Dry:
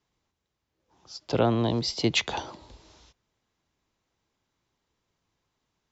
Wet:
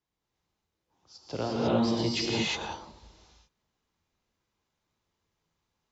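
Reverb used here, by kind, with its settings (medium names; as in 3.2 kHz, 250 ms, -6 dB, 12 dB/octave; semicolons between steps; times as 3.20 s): gated-style reverb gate 380 ms rising, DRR -7 dB; trim -10 dB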